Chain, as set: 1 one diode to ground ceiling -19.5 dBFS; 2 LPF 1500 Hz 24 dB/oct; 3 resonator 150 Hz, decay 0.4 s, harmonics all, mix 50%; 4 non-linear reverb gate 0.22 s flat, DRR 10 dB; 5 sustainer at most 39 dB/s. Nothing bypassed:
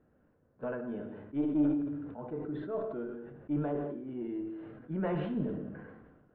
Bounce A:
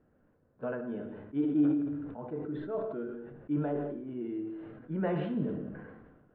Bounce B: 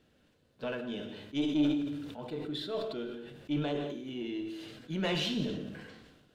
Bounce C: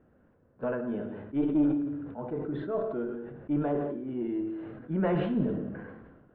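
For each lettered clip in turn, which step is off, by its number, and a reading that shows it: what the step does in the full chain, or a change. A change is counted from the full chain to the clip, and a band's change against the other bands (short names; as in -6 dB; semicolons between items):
1, loudness change +1.5 LU; 2, 2 kHz band +7.5 dB; 3, crest factor change -1.5 dB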